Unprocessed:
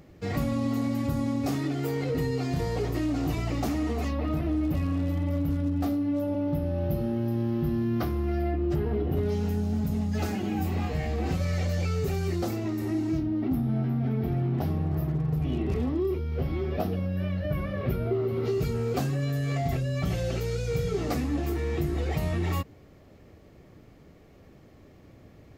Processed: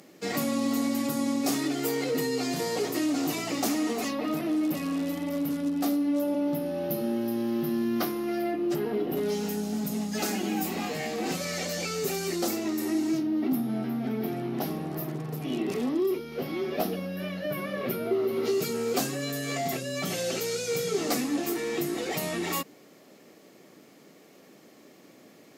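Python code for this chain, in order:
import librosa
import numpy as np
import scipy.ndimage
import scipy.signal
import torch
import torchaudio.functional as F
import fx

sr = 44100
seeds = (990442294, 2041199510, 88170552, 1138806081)

y = scipy.signal.sosfilt(scipy.signal.butter(4, 200.0, 'highpass', fs=sr, output='sos'), x)
y = fx.peak_eq(y, sr, hz=10000.0, db=12.0, octaves=2.3)
y = np.clip(y, -10.0 ** (-19.5 / 20.0), 10.0 ** (-19.5 / 20.0))
y = F.gain(torch.from_numpy(y), 1.5).numpy()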